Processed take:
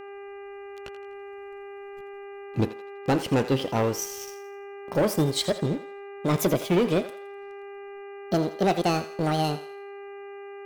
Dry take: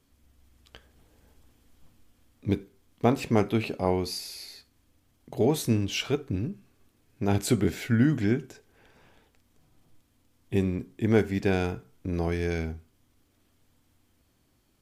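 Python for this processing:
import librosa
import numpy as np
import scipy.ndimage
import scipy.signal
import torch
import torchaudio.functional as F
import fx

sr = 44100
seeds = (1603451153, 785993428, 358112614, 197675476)

y = fx.speed_glide(x, sr, from_pct=82, to_pct=196)
y = fx.transient(y, sr, attack_db=1, sustain_db=-4)
y = fx.leveller(y, sr, passes=3)
y = fx.dmg_buzz(y, sr, base_hz=400.0, harmonics=7, level_db=-35.0, tilt_db=-7, odd_only=False)
y = fx.echo_thinned(y, sr, ms=83, feedback_pct=43, hz=600.0, wet_db=-12)
y = y * 10.0 ** (-6.5 / 20.0)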